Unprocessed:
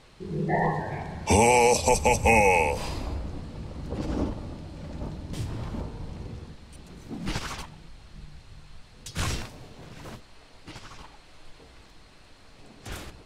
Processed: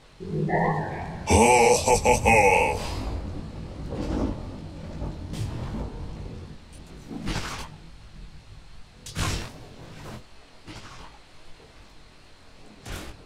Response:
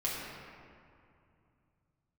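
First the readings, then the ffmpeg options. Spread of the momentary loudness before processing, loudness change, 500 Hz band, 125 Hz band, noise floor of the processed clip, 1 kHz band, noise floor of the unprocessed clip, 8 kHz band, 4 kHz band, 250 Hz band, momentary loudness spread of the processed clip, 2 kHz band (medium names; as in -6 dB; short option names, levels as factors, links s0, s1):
24 LU, +2.0 dB, +1.5 dB, +1.5 dB, -51 dBFS, +2.0 dB, -52 dBFS, +1.5 dB, +1.5 dB, +1.5 dB, 23 LU, +1.5 dB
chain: -af "flanger=delay=18.5:depth=5.8:speed=2.6,volume=1.68"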